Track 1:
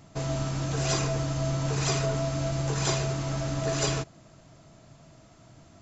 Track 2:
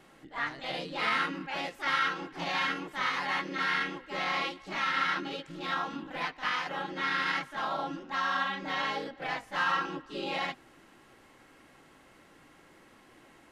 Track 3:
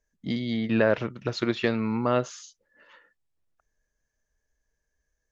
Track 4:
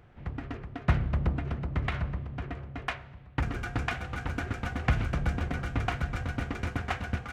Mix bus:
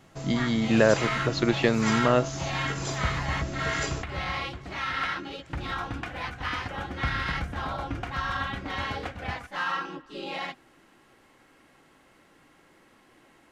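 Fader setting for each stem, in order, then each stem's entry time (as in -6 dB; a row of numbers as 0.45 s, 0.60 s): -6.0 dB, -1.0 dB, +2.0 dB, -5.0 dB; 0.00 s, 0.00 s, 0.00 s, 2.15 s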